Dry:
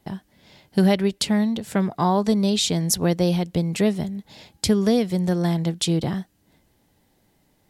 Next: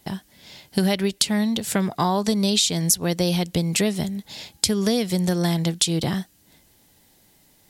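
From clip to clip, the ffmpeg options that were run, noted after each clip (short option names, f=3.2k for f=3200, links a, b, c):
-af "highshelf=f=2.5k:g=11.5,acompressor=threshold=-19dB:ratio=5,volume=1.5dB"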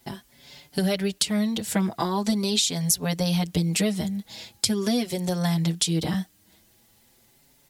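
-filter_complex "[0:a]acrusher=bits=9:mix=0:aa=0.000001,asplit=2[a][b];[b]adelay=5.5,afreqshift=0.42[c];[a][c]amix=inputs=2:normalize=1"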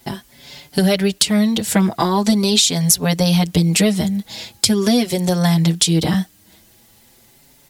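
-af "acontrast=78,volume=2dB"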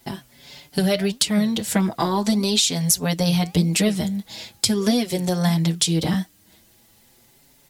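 -af "flanger=delay=3:depth=5.4:regen=86:speed=1.6:shape=sinusoidal"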